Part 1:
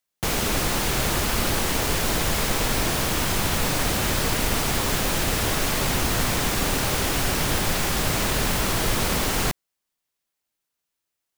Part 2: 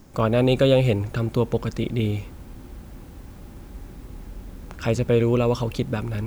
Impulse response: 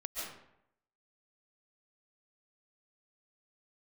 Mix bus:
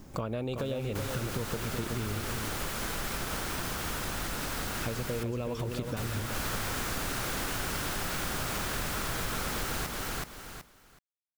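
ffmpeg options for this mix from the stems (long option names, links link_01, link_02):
-filter_complex "[0:a]equalizer=frequency=1400:width=2.6:gain=6.5,acrusher=bits=4:mix=0:aa=0.000001,adelay=350,volume=-3.5dB,asplit=3[link_01][link_02][link_03];[link_01]atrim=end=4.86,asetpts=PTS-STARTPTS,afade=type=out:start_time=4.856:duration=0.004:curve=hsin[link_04];[link_02]atrim=start=4.86:end=5.59,asetpts=PTS-STARTPTS,volume=0[link_05];[link_03]atrim=start=5.59,asetpts=PTS-STARTPTS,afade=type=in:duration=0.004:curve=hsin[link_06];[link_04][link_05][link_06]concat=n=3:v=0:a=1,asplit=2[link_07][link_08];[link_08]volume=-4.5dB[link_09];[1:a]acompressor=threshold=-22dB:ratio=4,volume=-0.5dB,asplit=3[link_10][link_11][link_12];[link_11]volume=-6.5dB[link_13];[link_12]apad=whole_len=516912[link_14];[link_07][link_14]sidechaincompress=threshold=-44dB:ratio=5:attack=6.3:release=102[link_15];[link_09][link_13]amix=inputs=2:normalize=0,aecho=0:1:375|750|1125:1|0.19|0.0361[link_16];[link_15][link_10][link_16]amix=inputs=3:normalize=0,acompressor=threshold=-33dB:ratio=3"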